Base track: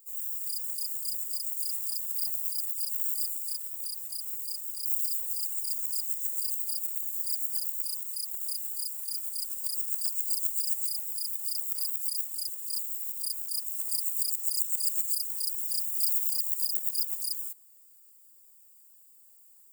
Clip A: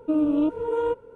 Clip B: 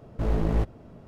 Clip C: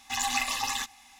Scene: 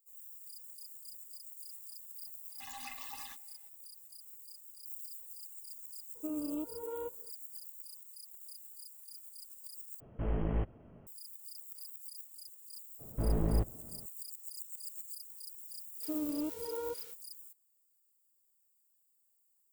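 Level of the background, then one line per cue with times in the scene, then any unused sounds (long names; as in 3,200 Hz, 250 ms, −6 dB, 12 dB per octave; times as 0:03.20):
base track −16.5 dB
0:02.50: mix in C −17.5 dB + high-shelf EQ 3,900 Hz −6 dB
0:06.15: mix in A −16 dB
0:10.00: overwrite with B −8.5 dB + linear-phase brick-wall low-pass 3,300 Hz
0:12.99: mix in B −5.5 dB + low-pass filter 1,100 Hz 6 dB per octave
0:16.00: mix in A −14.5 dB, fades 0.05 s + spike at every zero crossing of −24.5 dBFS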